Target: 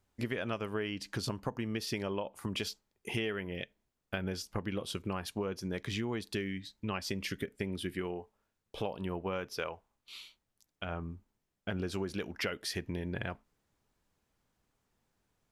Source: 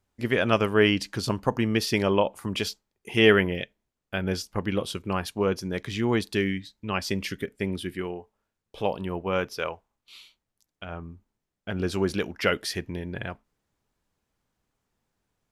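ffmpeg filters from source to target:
ffmpeg -i in.wav -af "acompressor=threshold=-32dB:ratio=12" out.wav

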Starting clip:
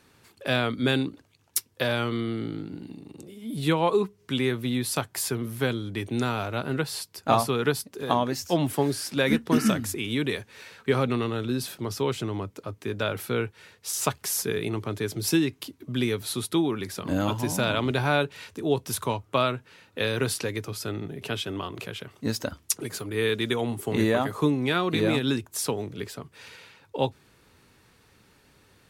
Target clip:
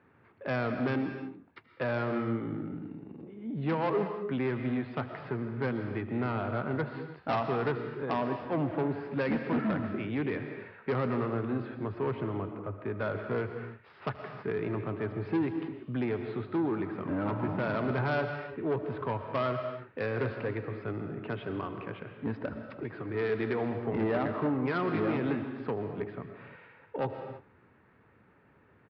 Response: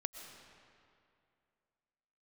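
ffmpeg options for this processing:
-filter_complex "[0:a]lowpass=frequency=2000:width=0.5412,lowpass=frequency=2000:width=1.3066,aresample=11025,asoftclip=type=tanh:threshold=-22.5dB,aresample=44100,highpass=80,aecho=1:1:79:0.1[link_01];[1:a]atrim=start_sample=2205,afade=type=out:start_time=0.39:duration=0.01,atrim=end_sample=17640[link_02];[link_01][link_02]afir=irnorm=-1:irlink=0"

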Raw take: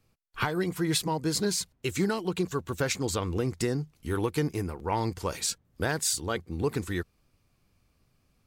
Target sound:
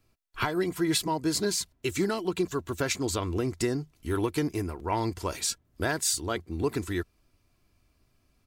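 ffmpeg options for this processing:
ffmpeg -i in.wav -af "aecho=1:1:3:0.39" out.wav

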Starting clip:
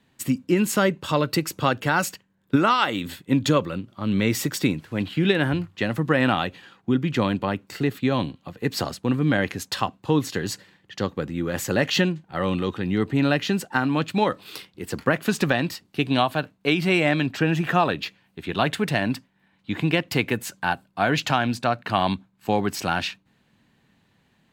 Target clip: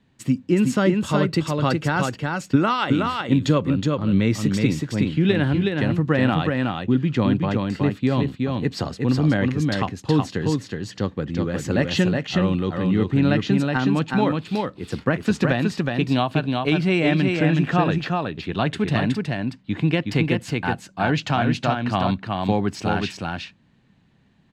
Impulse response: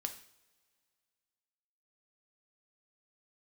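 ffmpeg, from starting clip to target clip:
-filter_complex "[0:a]lowpass=7000,lowshelf=frequency=300:gain=8.5,asplit=2[link_01][link_02];[link_02]aecho=0:1:369:0.668[link_03];[link_01][link_03]amix=inputs=2:normalize=0,volume=-3dB"

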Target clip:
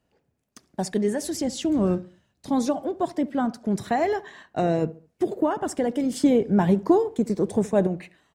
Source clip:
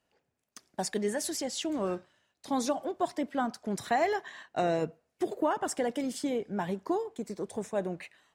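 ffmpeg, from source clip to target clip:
ffmpeg -i in.wav -filter_complex "[0:a]asettb=1/sr,asplit=3[link_01][link_02][link_03];[link_01]atrim=end=1.344[link_04];[link_02]atrim=start=1.34:end=2.5,asetpts=PTS-STARTPTS,afade=type=in:duration=0.004:curve=qsin,afade=type=out:start_time=1.156:duration=0.004:curve=qsin,bass=frequency=250:gain=7,treble=frequency=4000:gain=2[link_05];[link_03]atrim=start=2.496[link_06];[link_04][link_05]acrossfade=duration=0.004:curve1=hsin:curve2=qsin[link_07];[link_07][link_06]acrossfade=duration=0.004:curve1=qsin:curve2=hsin,asettb=1/sr,asplit=3[link_08][link_09][link_10];[link_08]atrim=end=6.124[link_11];[link_09]atrim=start=6.12:end=7.87,asetpts=PTS-STARTPTS,afade=type=in:duration=0.004:curve=qsin,afade=type=out:start_time=1.746:duration=0.004:curve=qsin,acontrast=37[link_12];[link_10]atrim=start=7.866[link_13];[link_11][link_12]acrossfade=duration=0.004:curve1=hsin:curve2=qsin[link_14];[link_14][link_13]acrossfade=duration=0.004:curve1=qsin:curve2=hsin,lowshelf=frequency=430:gain=12,asplit=2[link_15][link_16];[link_16]adelay=70,lowpass=frequency=1300:poles=1,volume=-18.5dB,asplit=2[link_17][link_18];[link_18]adelay=70,lowpass=frequency=1300:poles=1,volume=0.38,asplit=2[link_19][link_20];[link_20]adelay=70,lowpass=frequency=1300:poles=1,volume=0.38[link_21];[link_15][link_17][link_19][link_21]amix=inputs=4:normalize=0" out.wav

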